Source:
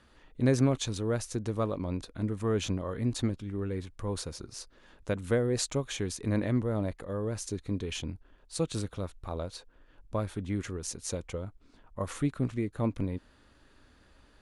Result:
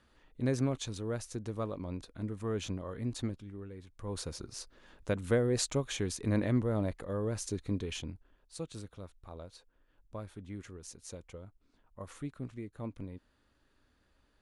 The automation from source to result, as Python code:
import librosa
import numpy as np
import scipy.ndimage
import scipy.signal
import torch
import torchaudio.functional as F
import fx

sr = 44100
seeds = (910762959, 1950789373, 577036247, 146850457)

y = fx.gain(x, sr, db=fx.line((3.31, -6.0), (3.76, -13.5), (4.28, -1.0), (7.72, -1.0), (8.69, -11.0)))